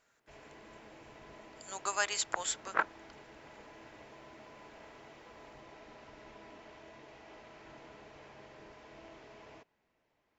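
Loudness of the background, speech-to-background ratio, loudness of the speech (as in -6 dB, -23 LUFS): -54.0 LUFS, 19.5 dB, -34.5 LUFS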